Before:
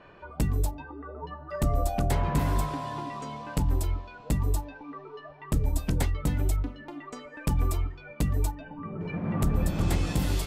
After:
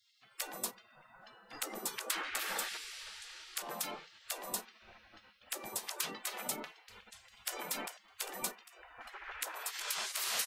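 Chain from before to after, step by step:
brickwall limiter −20.5 dBFS, peak gain reduction 6.5 dB
0:01.11–0:02.79: low-shelf EQ 420 Hz +4.5 dB
0:06.86–0:07.57: delay throw 400 ms, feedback 50%, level −9.5 dB
gate on every frequency bin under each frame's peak −30 dB weak
level +8 dB

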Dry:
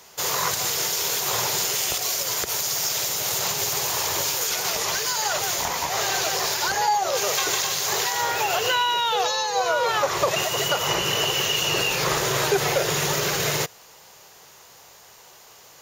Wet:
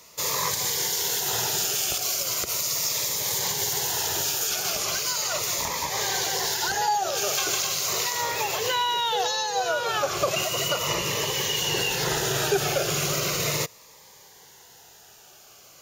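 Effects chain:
phaser whose notches keep moving one way falling 0.37 Hz
level −1 dB

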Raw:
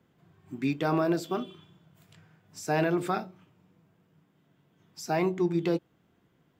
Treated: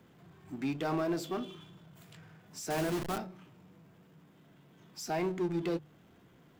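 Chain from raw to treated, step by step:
0:02.70–0:03.18: hold until the input has moved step −27.5 dBFS
mains-hum notches 50/100/150 Hz
power curve on the samples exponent 0.7
level −8.5 dB

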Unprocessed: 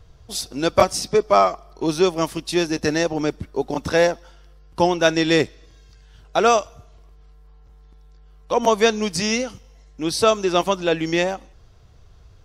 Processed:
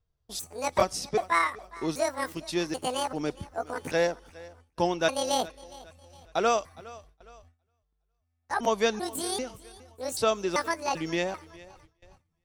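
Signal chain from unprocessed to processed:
pitch shifter gated in a rhythm +9 semitones, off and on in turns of 391 ms
feedback echo with a high-pass in the loop 412 ms, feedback 43%, high-pass 160 Hz, level −20 dB
noise gate with hold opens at −34 dBFS
level −8.5 dB

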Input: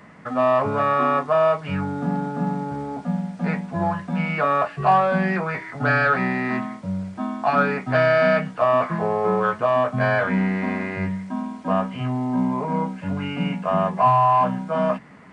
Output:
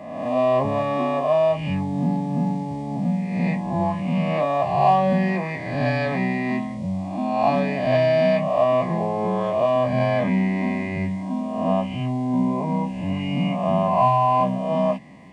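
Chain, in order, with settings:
peak hold with a rise ahead of every peak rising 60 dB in 1.13 s
Butterworth band-reject 1,400 Hz, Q 1.6
notch comb filter 450 Hz

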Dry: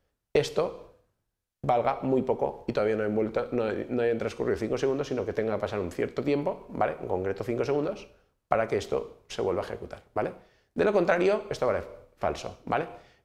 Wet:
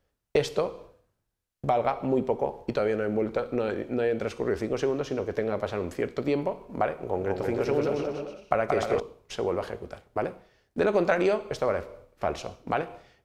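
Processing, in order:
0:06.95–0:09.00: bouncing-ball delay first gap 180 ms, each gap 0.7×, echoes 5

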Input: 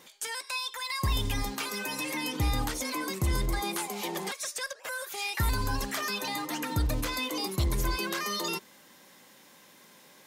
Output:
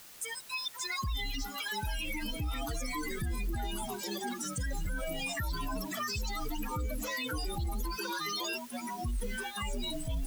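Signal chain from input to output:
spectral dynamics exaggerated over time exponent 3
delay with pitch and tempo change per echo 525 ms, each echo −4 semitones, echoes 2
in parallel at −4 dB: bit-depth reduction 8 bits, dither triangular
on the sum: brickwall limiter −27 dBFS, peak gain reduction 10.5 dB

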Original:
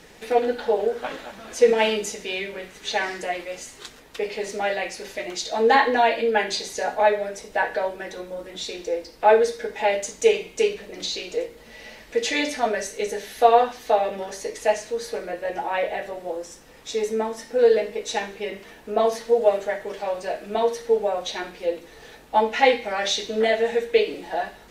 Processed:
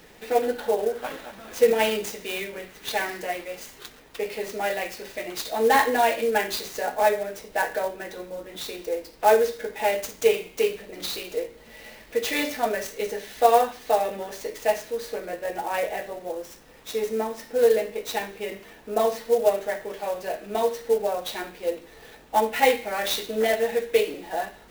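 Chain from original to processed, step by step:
converter with an unsteady clock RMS 0.025 ms
level −2 dB

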